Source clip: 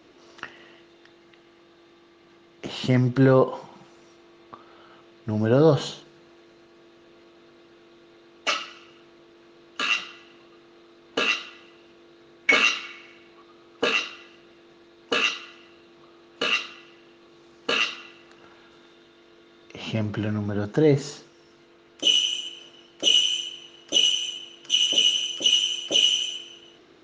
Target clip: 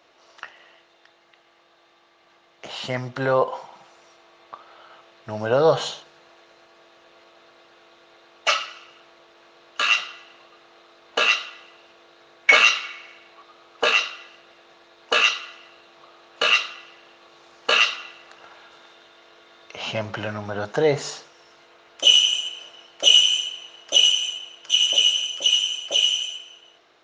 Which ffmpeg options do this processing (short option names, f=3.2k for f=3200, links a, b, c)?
-af "dynaudnorm=f=640:g=11:m=11.5dB,lowshelf=f=450:t=q:w=1.5:g=-11,volume=-1dB"